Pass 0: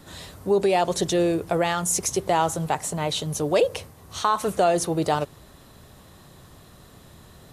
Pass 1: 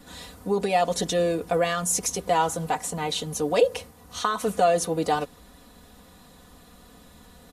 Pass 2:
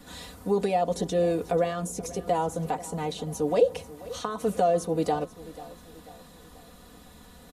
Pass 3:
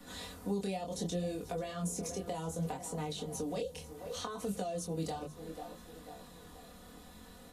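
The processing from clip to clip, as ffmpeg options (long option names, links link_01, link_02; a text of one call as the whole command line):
ffmpeg -i in.wav -af "aecho=1:1:4.1:0.9,volume=-3.5dB" out.wav
ffmpeg -i in.wav -filter_complex "[0:a]acrossover=split=770[link_01][link_02];[link_02]acompressor=threshold=-39dB:ratio=4[link_03];[link_01][link_03]amix=inputs=2:normalize=0,aecho=1:1:488|976|1464|1952:0.126|0.0604|0.029|0.0139" out.wav
ffmpeg -i in.wav -filter_complex "[0:a]bandreject=frequency=50:width_type=h:width=6,bandreject=frequency=100:width_type=h:width=6,bandreject=frequency=150:width_type=h:width=6,flanger=delay=20:depth=6.1:speed=0.66,acrossover=split=190|3000[link_01][link_02][link_03];[link_02]acompressor=threshold=-38dB:ratio=6[link_04];[link_01][link_04][link_03]amix=inputs=3:normalize=0" out.wav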